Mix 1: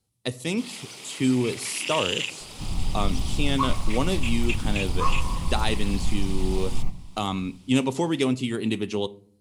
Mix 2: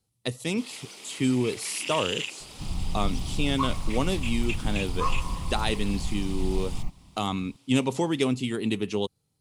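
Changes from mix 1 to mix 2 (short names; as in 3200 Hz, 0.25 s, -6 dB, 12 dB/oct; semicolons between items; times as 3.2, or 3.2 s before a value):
first sound -3.5 dB; reverb: off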